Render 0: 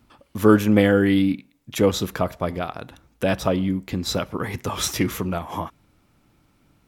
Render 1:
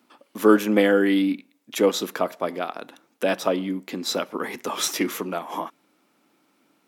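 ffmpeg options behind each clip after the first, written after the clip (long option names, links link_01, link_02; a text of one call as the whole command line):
ffmpeg -i in.wav -af "highpass=frequency=240:width=0.5412,highpass=frequency=240:width=1.3066" out.wav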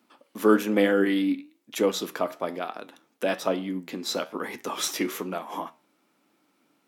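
ffmpeg -i in.wav -af "flanger=delay=8.9:depth=5.9:regen=76:speed=1.1:shape=triangular,volume=1dB" out.wav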